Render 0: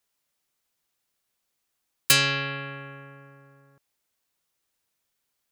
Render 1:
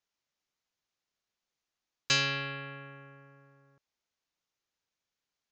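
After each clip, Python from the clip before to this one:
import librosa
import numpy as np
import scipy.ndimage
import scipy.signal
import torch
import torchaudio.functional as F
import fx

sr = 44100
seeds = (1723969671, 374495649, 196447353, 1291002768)

y = scipy.signal.sosfilt(scipy.signal.butter(12, 6900.0, 'lowpass', fs=sr, output='sos'), x)
y = y * librosa.db_to_amplitude(-6.5)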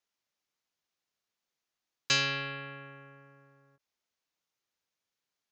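y = fx.low_shelf(x, sr, hz=75.0, db=-8.5)
y = fx.end_taper(y, sr, db_per_s=550.0)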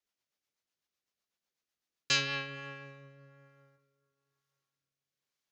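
y = fx.rev_plate(x, sr, seeds[0], rt60_s=3.3, hf_ratio=0.6, predelay_ms=0, drr_db=17.0)
y = fx.rotary_switch(y, sr, hz=8.0, then_hz=1.1, switch_at_s=1.79)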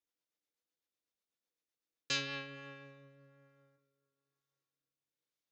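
y = fx.small_body(x, sr, hz=(310.0, 480.0, 3600.0), ring_ms=55, db=10)
y = y * librosa.db_to_amplitude(-7.0)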